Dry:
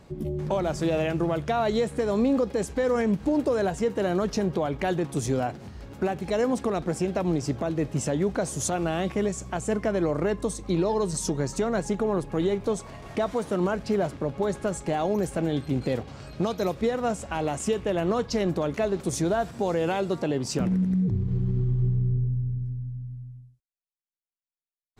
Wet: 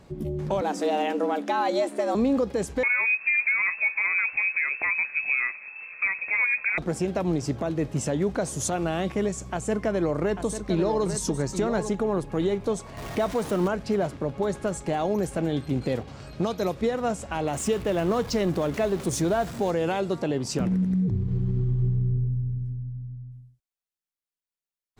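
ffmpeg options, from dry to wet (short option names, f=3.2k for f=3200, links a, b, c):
-filter_complex "[0:a]asettb=1/sr,asplit=3[a][b][c];[a]atrim=end=0.614[d];[b]atrim=start=0.61:end=2.15,asetpts=PTS-STARTPTS,afade=t=in:d=0.004:c=qsin,afade=t=out:st=1.536:d=0.004:c=qsin,afreqshift=140[e];[c]atrim=start=2.146[f];[d][e]acrossfade=d=0.004:c1=hsin:c2=qsin[g];[g][f]acrossfade=d=0.004:c1=qsin:c2=hsin,asettb=1/sr,asplit=3[h][i][j];[h]atrim=end=2.834[k];[i]atrim=start=2.83:end=6.78,asetpts=PTS-STARTPTS,afade=t=in:d=0.004:c=qsin,afade=t=out:st=3.946:d=0.004:c=qsin,lowpass=f=2.3k:t=q:w=0.5098,lowpass=f=2.3k:t=q:w=0.6013,lowpass=f=2.3k:t=q:w=0.9,lowpass=f=2.3k:t=q:w=2.563,afreqshift=-2700[l];[j]atrim=start=6.776[m];[k][l]acrossfade=d=0.004:c1=hsin:c2=qsin[n];[n][m]acrossfade=d=0.004:c1=qsin:c2=hsin,asettb=1/sr,asplit=3[o][p][q];[o]atrim=end=9.434[r];[p]atrim=start=9.43:end=11.89,asetpts=PTS-STARTPTS,afade=t=in:d=0.004:c=qsin,afade=t=out:st=2.456:d=0.004:c=qsin,aecho=1:1:844:0.355,atrim=end_sample=108486[s];[q]atrim=start=11.886[t];[r][s]acrossfade=d=0.004:c1=hsin:c2=qsin[u];[u][t]acrossfade=d=0.004:c1=qsin:c2=hsin,asettb=1/sr,asplit=3[v][w][x];[v]atrim=end=12.974[y];[w]atrim=start=12.97:end=13.68,asetpts=PTS-STARTPTS,afade=t=in:d=0.004:c=qsin,afade=t=out:st=0.706:d=0.004:c=qsin,aeval=exprs='val(0)+0.5*0.0188*sgn(val(0))':c=same[z];[x]atrim=start=13.676[aa];[y][z]acrossfade=d=0.004:c1=hsin:c2=qsin[ab];[ab][aa]acrossfade=d=0.004:c1=qsin:c2=hsin,asettb=1/sr,asplit=3[ac][ad][ae];[ac]atrim=end=17.534[af];[ad]atrim=start=17.53:end=19.71,asetpts=PTS-STARTPTS,afade=t=in:d=0.004:c=qsin,afade=t=out:st=2.176:d=0.004:c=qsin,aeval=exprs='val(0)+0.5*0.015*sgn(val(0))':c=same[ag];[ae]atrim=start=19.706[ah];[af][ag]acrossfade=d=0.004:c1=hsin:c2=qsin[ai];[ai][ah]acrossfade=d=0.004:c1=qsin:c2=hsin,asettb=1/sr,asplit=3[aj][ak][al];[aj]atrim=end=22.724[am];[ak]atrim=start=22.72:end=23.32,asetpts=PTS-STARTPTS,afade=t=in:d=0.004:c=qsin,afade=t=out:st=0.596:d=0.004:c=qsin,adynamicsmooth=sensitivity=4.5:basefreq=1.3k[an];[al]atrim=start=23.316[ao];[am][an]acrossfade=d=0.004:c1=hsin:c2=qsin[ap];[ap][ao]acrossfade=d=0.004:c1=qsin:c2=hsin"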